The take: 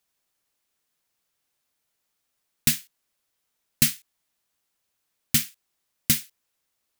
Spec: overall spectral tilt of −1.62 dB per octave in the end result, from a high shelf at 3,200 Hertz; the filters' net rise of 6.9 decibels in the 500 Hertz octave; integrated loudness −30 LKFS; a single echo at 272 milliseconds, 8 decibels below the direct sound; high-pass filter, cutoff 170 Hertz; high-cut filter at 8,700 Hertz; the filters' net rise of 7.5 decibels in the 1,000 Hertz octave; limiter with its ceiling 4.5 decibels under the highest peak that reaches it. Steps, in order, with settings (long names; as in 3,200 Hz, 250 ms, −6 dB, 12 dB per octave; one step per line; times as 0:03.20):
high-pass filter 170 Hz
low-pass filter 8,700 Hz
parametric band 500 Hz +7.5 dB
parametric band 1,000 Hz +8.5 dB
high-shelf EQ 3,200 Hz +4 dB
brickwall limiter −9.5 dBFS
single-tap delay 272 ms −8 dB
level −0.5 dB